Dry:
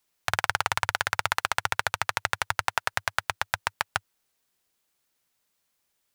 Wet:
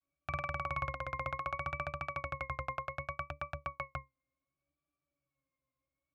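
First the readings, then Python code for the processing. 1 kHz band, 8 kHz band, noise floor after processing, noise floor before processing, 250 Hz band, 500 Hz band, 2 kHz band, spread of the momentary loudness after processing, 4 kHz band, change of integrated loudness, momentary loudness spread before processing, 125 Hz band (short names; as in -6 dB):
-9.5 dB, under -30 dB, under -85 dBFS, -76 dBFS, -1.0 dB, -5.0 dB, -14.5 dB, 5 LU, -24.5 dB, -11.5 dB, 4 LU, -2.0 dB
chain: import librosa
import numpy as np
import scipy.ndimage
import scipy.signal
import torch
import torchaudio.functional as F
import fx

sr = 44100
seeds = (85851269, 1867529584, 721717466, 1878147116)

y = fx.octave_resonator(x, sr, note='C#', decay_s=0.17)
y = fx.vibrato(y, sr, rate_hz=0.66, depth_cents=74.0)
y = y * librosa.db_to_amplitude(7.0)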